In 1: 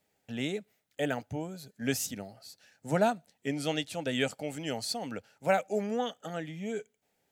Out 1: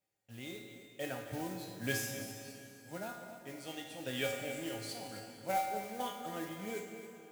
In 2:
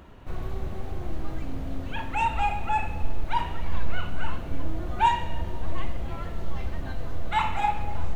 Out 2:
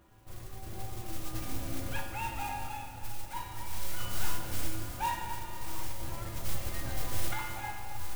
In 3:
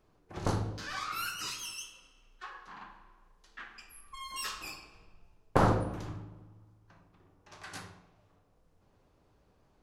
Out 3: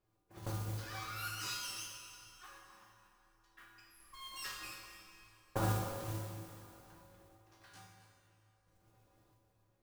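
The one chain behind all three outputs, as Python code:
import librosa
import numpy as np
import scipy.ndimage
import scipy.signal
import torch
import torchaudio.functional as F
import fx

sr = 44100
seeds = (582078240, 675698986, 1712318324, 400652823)

y = fx.tremolo_random(x, sr, seeds[0], hz=1.5, depth_pct=75)
y = fx.comb_fb(y, sr, f0_hz=110.0, decay_s=0.66, harmonics='odd', damping=0.0, mix_pct=90)
y = fx.mod_noise(y, sr, seeds[1], snr_db=13)
y = y + 10.0 ** (-12.5 / 20.0) * np.pad(y, (int(266 * sr / 1000.0), 0))[:len(y)]
y = fx.rev_plate(y, sr, seeds[2], rt60_s=3.3, hf_ratio=0.75, predelay_ms=0, drr_db=5.0)
y = F.gain(torch.from_numpy(y), 11.5).numpy()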